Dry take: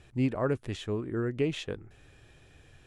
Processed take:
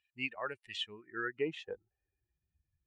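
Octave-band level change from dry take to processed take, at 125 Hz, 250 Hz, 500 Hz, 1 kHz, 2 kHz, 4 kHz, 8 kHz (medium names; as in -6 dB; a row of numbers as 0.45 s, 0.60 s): -22.0 dB, -14.5 dB, -8.5 dB, -3.5 dB, +2.5 dB, +1.5 dB, no reading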